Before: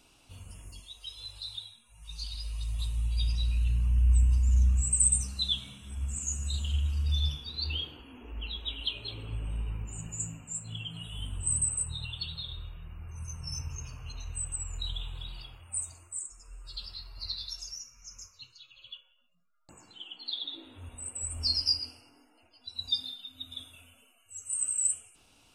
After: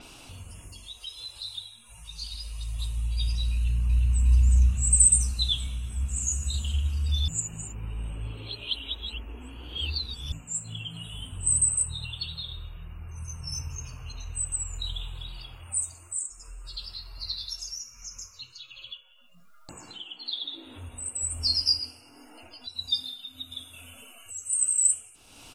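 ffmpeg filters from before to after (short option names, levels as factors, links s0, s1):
-filter_complex "[0:a]asplit=2[s0][s1];[s1]afade=t=in:st=3.53:d=0.01,afade=t=out:st=4.23:d=0.01,aecho=0:1:360|720|1080|1440|1800|2160|2520|2880|3240|3600|3960|4320:0.668344|0.534675|0.42774|0.342192|0.273754|0.219003|0.175202|0.140162|0.11213|0.0897036|0.0717629|0.0574103[s2];[s0][s2]amix=inputs=2:normalize=0,asplit=3[s3][s4][s5];[s3]atrim=end=7.282[s6];[s4]atrim=start=7.278:end=10.322,asetpts=PTS-STARTPTS,areverse[s7];[s5]atrim=start=10.318[s8];[s6][s7]acrossfade=d=0.004:c1=hsin:c2=hsin[s9];[s9][s8]acrossfade=d=0.004:c1=hsin:c2=hsin,acompressor=mode=upward:threshold=0.0126:ratio=2.5,bandreject=f=50:t=h:w=6,bandreject=f=100:t=h:w=6,bandreject=f=150:t=h:w=6,bandreject=f=200:t=h:w=6,adynamicequalizer=threshold=0.00708:dfrequency=5900:dqfactor=0.7:tfrequency=5900:tqfactor=0.7:attack=5:release=100:ratio=0.375:range=2.5:mode=boostabove:tftype=highshelf,volume=1.26"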